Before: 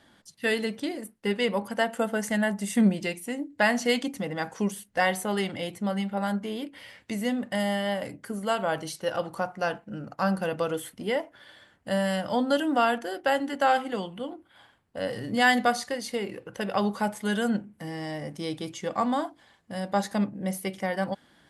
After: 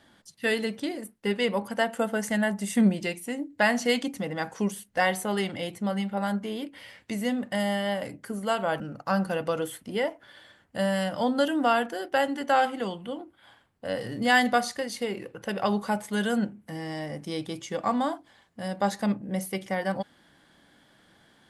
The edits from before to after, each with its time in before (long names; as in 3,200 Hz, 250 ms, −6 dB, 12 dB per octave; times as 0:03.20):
0:08.80–0:09.92: remove